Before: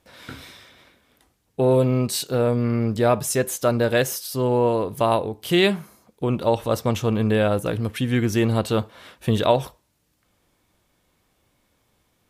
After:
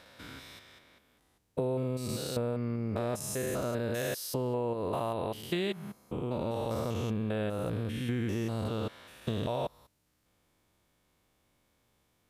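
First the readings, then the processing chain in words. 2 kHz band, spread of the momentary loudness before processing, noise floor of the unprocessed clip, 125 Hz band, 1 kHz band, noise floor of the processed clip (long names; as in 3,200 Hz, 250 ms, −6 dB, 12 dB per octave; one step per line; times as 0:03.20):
−13.5 dB, 10 LU, −68 dBFS, −11.0 dB, −13.0 dB, −73 dBFS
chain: spectrum averaged block by block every 200 ms
downward compressor, threshold −24 dBFS, peak gain reduction 9 dB
level −4.5 dB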